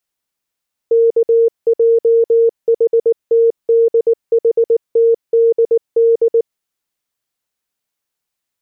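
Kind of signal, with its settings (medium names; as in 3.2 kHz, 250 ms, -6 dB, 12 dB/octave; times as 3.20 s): Morse "KJHTDHTDD" 19 wpm 460 Hz -7.5 dBFS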